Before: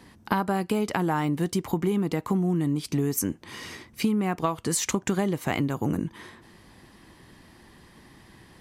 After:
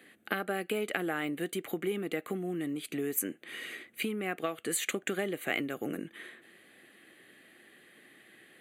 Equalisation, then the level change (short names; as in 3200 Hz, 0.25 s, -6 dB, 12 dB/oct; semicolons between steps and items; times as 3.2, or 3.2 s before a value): HPF 430 Hz 12 dB/oct; bell 900 Hz +2.5 dB 2.4 oct; fixed phaser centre 2300 Hz, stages 4; 0.0 dB